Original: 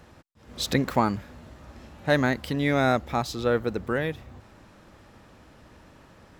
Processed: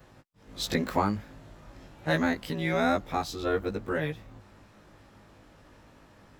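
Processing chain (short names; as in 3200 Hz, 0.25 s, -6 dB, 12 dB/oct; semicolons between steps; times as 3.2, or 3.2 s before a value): short-time reversal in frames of 39 ms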